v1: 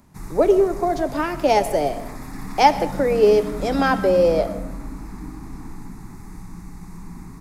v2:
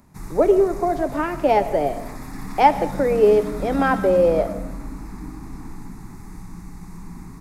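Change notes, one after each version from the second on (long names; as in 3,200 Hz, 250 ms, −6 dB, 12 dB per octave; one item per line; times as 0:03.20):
speech: add low-pass filter 2,500 Hz 12 dB per octave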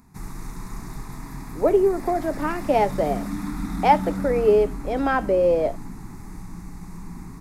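speech: entry +1.25 s
reverb: off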